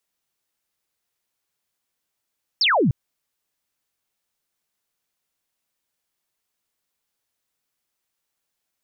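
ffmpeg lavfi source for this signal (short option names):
-f lavfi -i "aevalsrc='0.178*clip(t/0.002,0,1)*clip((0.3-t)/0.002,0,1)*sin(2*PI*5600*0.3/log(110/5600)*(exp(log(110/5600)*t/0.3)-1))':d=0.3:s=44100"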